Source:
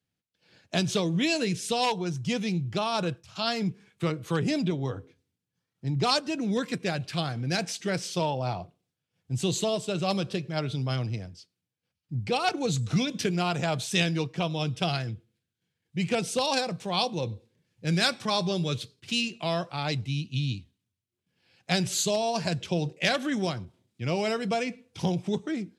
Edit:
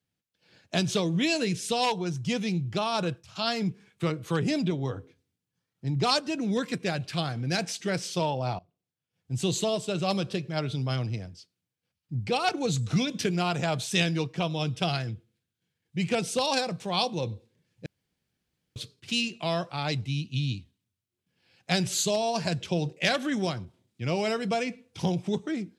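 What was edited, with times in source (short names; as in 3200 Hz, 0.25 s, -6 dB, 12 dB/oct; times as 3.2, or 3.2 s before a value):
8.59–9.44 fade in, from -23.5 dB
17.86–18.76 room tone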